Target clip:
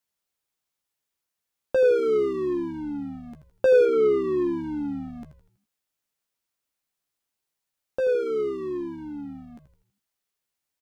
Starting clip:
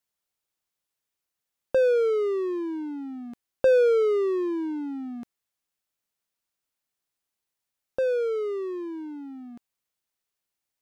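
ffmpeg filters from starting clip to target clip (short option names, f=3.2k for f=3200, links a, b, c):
-filter_complex "[0:a]asettb=1/sr,asplit=3[a][b][c];[a]atrim=end=3.854[d];[b]atrim=start=3.85:end=5.08,asetpts=PTS-STARTPTS,afade=t=in:d=0.004:c=qsin,afade=t=out:st=1.226:d=0.004:c=qsin,acrossover=split=3300[e][f];[f]acompressor=threshold=-57dB:ratio=4:attack=1:release=60[g];[e][g]amix=inputs=2:normalize=0[h];[c]atrim=start=5.076[i];[d][h]acrossfade=d=0.004:c1=hsin:c2=qsin[j];[j][i]acrossfade=d=0.004:c1=qsin:c2=hsin,asplit=2[k][l];[l]adelay=14,volume=-8dB[m];[k][m]amix=inputs=2:normalize=0,asplit=6[n][o][p][q][r][s];[o]adelay=81,afreqshift=-88,volume=-11dB[t];[p]adelay=162,afreqshift=-176,volume=-17.7dB[u];[q]adelay=243,afreqshift=-264,volume=-24.5dB[v];[r]adelay=324,afreqshift=-352,volume=-31.2dB[w];[s]adelay=405,afreqshift=-440,volume=-38dB[x];[n][t][u][v][w][x]amix=inputs=6:normalize=0"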